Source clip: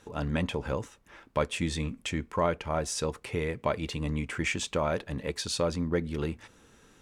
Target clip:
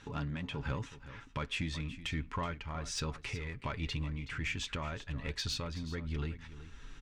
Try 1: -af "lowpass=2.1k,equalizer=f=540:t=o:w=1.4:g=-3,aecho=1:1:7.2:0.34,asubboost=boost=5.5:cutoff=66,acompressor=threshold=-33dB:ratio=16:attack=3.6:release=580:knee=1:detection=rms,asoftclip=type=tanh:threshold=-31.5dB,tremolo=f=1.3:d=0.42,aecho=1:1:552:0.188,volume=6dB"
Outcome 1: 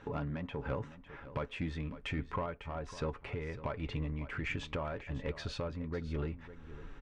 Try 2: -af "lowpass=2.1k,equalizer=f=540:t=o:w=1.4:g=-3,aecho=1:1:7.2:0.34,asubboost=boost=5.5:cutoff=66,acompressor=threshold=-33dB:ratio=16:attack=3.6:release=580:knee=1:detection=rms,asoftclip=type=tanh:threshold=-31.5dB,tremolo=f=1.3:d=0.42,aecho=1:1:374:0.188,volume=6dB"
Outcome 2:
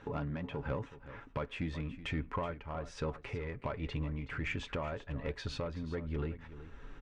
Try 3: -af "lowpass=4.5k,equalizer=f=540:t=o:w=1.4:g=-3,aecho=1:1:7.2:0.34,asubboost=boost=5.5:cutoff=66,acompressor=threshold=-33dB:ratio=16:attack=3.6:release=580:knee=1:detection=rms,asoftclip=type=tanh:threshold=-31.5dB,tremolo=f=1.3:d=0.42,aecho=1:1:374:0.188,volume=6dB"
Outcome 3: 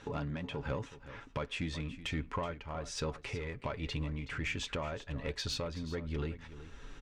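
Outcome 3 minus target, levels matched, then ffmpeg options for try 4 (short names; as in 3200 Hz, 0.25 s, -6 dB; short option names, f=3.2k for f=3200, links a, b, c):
500 Hz band +5.5 dB
-af "lowpass=4.5k,equalizer=f=540:t=o:w=1.4:g=-12.5,aecho=1:1:7.2:0.34,asubboost=boost=5.5:cutoff=66,acompressor=threshold=-33dB:ratio=16:attack=3.6:release=580:knee=1:detection=rms,asoftclip=type=tanh:threshold=-31.5dB,tremolo=f=1.3:d=0.42,aecho=1:1:374:0.188,volume=6dB"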